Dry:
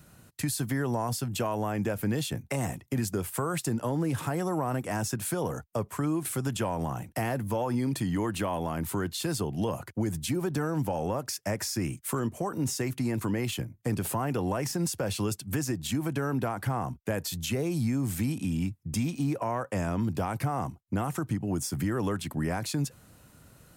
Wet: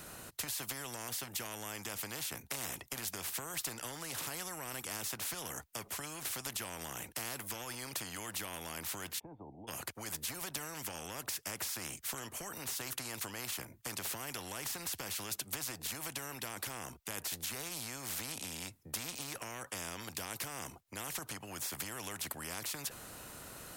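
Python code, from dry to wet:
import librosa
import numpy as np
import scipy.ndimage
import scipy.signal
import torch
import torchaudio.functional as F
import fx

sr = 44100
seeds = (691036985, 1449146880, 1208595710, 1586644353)

y = fx.formant_cascade(x, sr, vowel='u', at=(9.18, 9.67), fade=0.02)
y = fx.spectral_comp(y, sr, ratio=4.0)
y = F.gain(torch.from_numpy(y), -2.5).numpy()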